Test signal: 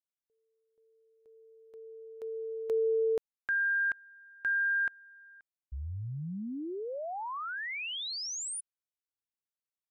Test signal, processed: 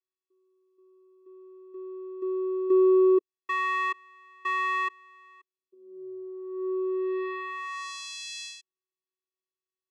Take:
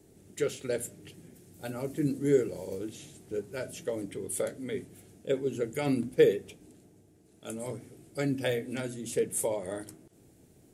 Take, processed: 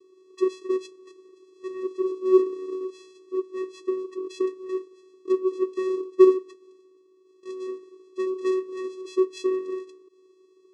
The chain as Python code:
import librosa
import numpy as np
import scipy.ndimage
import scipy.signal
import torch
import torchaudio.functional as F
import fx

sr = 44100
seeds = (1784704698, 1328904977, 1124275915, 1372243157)

y = fx.high_shelf(x, sr, hz=4800.0, db=5.0)
y = fx.vocoder(y, sr, bands=4, carrier='square', carrier_hz=374.0)
y = y * librosa.db_to_amplitude(6.5)